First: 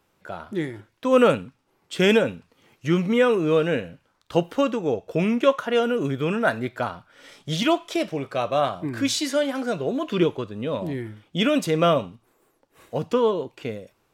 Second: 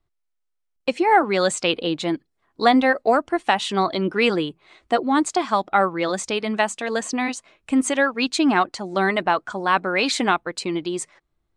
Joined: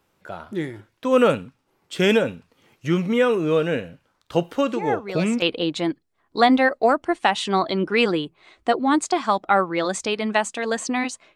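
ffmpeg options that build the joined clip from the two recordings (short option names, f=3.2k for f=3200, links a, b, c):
-filter_complex "[1:a]asplit=2[a][b];[0:a]apad=whole_dur=11.35,atrim=end=11.35,atrim=end=5.422[c];[b]atrim=start=1.658:end=7.59[d];[a]atrim=start=0.92:end=1.66,asetpts=PTS-STARTPTS,volume=-11dB,afade=t=in:d=0.004:c=hsin,afade=t=out:st=0.736:d=0.004:c=hsin,adelay=4680[e];[c][d]acrossfade=d=0.004:c1=hsin:c2=hsin[f];[f][e]amix=inputs=2:normalize=0"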